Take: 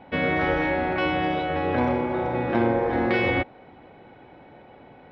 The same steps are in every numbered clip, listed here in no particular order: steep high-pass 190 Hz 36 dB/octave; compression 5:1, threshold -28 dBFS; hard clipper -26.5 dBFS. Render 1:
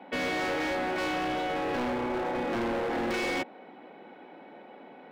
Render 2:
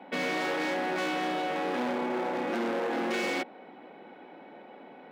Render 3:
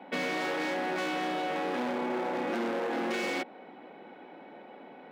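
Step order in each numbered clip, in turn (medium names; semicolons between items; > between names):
steep high-pass > hard clipper > compression; hard clipper > compression > steep high-pass; hard clipper > steep high-pass > compression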